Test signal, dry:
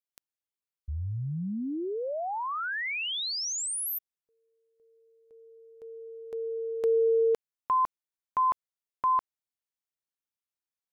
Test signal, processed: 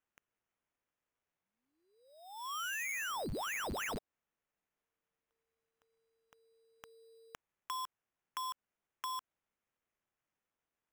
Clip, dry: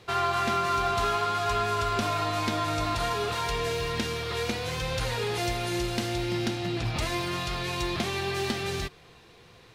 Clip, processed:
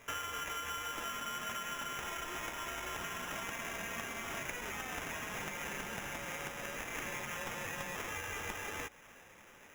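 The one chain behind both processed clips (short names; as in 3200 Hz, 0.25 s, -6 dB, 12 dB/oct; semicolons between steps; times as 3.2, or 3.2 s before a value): HPF 1400 Hz 24 dB/oct; compressor 6:1, threshold -39 dBFS; sample-rate reducer 4400 Hz, jitter 0%; gain +1 dB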